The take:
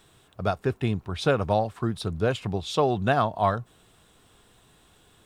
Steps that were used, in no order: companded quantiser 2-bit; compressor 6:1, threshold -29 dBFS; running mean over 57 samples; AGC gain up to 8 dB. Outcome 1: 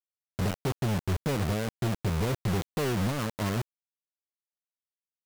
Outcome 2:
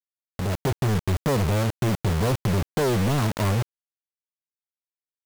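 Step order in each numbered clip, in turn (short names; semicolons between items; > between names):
AGC > compressor > running mean > companded quantiser; running mean > companded quantiser > compressor > AGC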